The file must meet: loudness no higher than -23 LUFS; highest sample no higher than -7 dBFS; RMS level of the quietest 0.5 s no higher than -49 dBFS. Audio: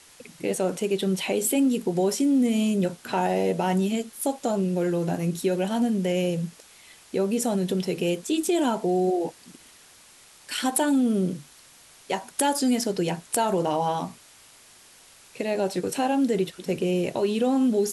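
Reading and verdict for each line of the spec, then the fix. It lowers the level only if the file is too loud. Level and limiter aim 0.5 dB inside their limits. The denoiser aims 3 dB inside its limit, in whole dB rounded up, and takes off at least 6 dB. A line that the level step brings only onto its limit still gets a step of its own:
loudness -25.0 LUFS: OK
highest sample -10.0 dBFS: OK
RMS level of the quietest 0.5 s -52 dBFS: OK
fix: none

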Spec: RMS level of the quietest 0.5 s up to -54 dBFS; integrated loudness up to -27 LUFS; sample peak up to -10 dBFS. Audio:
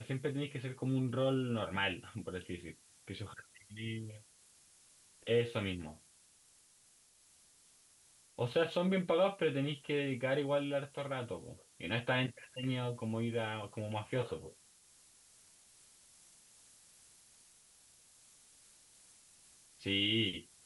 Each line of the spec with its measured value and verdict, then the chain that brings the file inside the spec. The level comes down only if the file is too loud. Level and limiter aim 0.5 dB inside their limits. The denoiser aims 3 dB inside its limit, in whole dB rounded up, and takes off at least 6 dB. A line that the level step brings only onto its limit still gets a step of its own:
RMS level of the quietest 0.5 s -66 dBFS: OK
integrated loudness -36.5 LUFS: OK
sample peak -20.5 dBFS: OK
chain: none

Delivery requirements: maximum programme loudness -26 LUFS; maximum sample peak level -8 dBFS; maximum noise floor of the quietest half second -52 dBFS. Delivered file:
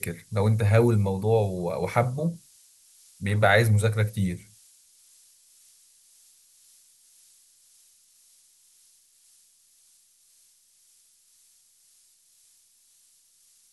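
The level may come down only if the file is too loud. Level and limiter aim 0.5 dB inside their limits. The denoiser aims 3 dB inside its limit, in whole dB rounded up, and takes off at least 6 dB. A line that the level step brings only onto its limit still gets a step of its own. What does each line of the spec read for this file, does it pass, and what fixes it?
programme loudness -24.0 LUFS: fail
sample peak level -6.0 dBFS: fail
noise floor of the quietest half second -61 dBFS: OK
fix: gain -2.5 dB

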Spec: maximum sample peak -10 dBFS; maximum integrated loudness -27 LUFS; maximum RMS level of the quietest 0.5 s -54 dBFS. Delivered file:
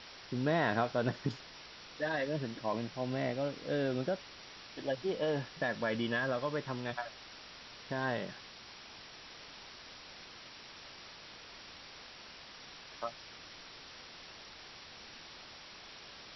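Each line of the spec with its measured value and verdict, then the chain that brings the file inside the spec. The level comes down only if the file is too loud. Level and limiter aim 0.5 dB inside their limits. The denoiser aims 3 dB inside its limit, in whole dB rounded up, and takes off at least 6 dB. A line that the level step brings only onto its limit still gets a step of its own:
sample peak -18.0 dBFS: OK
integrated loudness -36.0 LUFS: OK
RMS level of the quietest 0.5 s -52 dBFS: fail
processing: denoiser 6 dB, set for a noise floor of -52 dBFS

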